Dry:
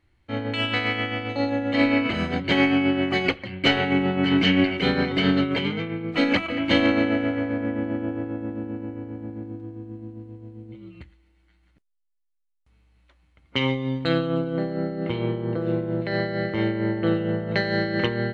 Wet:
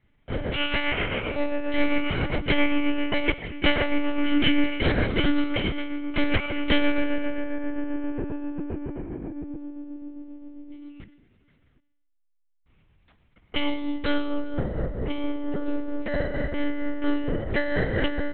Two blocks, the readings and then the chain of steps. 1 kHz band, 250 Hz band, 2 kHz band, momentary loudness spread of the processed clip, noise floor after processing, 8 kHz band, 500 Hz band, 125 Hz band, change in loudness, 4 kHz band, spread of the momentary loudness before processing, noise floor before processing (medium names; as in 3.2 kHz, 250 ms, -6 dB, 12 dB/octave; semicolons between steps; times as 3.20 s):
-4.0 dB, -3.5 dB, -2.5 dB, 12 LU, -67 dBFS, no reading, -3.5 dB, -4.5 dB, -3.5 dB, -3.0 dB, 15 LU, -67 dBFS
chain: Schroeder reverb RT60 1.5 s, combs from 33 ms, DRR 16.5 dB; monotone LPC vocoder at 8 kHz 290 Hz